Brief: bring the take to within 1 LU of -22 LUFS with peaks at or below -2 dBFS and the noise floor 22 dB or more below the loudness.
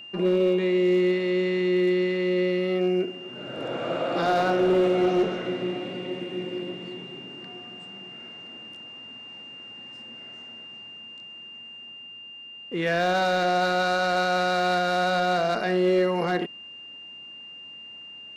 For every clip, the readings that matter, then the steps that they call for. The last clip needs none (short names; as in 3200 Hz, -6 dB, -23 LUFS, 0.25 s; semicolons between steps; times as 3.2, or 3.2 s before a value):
clipped 0.6%; flat tops at -16.0 dBFS; steady tone 2800 Hz; tone level -40 dBFS; loudness -24.5 LUFS; peak -16.0 dBFS; loudness target -22.0 LUFS
-> clip repair -16 dBFS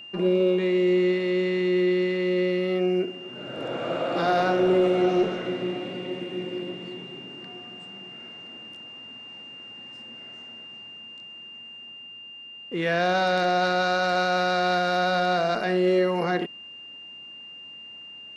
clipped 0.0%; steady tone 2800 Hz; tone level -40 dBFS
-> notch 2800 Hz, Q 30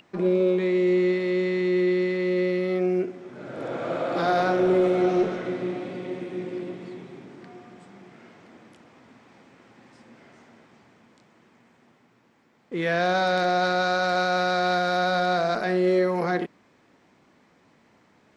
steady tone none; loudness -24.0 LUFS; peak -10.5 dBFS; loudness target -22.0 LUFS
-> gain +2 dB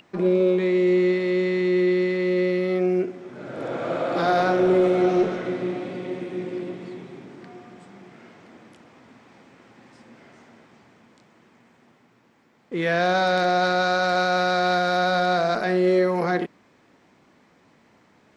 loudness -22.0 LUFS; peak -8.5 dBFS; noise floor -59 dBFS